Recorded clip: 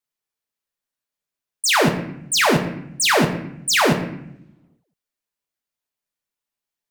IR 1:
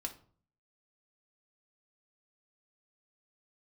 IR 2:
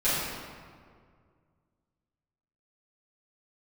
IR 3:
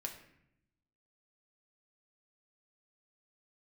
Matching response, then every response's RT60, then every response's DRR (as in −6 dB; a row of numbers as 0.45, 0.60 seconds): 3; 0.45, 2.0, 0.75 seconds; 2.0, −15.0, 1.5 decibels